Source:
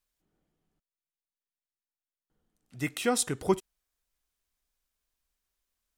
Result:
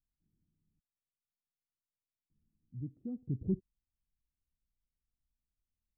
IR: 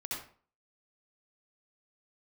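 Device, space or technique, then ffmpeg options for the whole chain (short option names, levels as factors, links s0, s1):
the neighbour's flat through the wall: -filter_complex "[0:a]asettb=1/sr,asplit=3[s0][s1][s2];[s0]atrim=end=2.814[s3];[s1]atrim=start=2.81:end=3.27,asetpts=PTS-STARTPTS,afade=t=in:d=0.004:c=qsin,afade=t=out:st=0.456:d=0.004:c=qsin,tiltshelf=f=680:g=-7.5[s4];[s2]atrim=start=3.266[s5];[s3][s4]acrossfade=d=0.004:c1=hsin:c2=qsin[s6];[s6][s5]acrossfade=d=0.004:c1=qsin:c2=hsin,lowpass=f=260:w=0.5412,lowpass=f=260:w=1.3066,equalizer=f=100:t=o:w=0.91:g=6.5,volume=0.891"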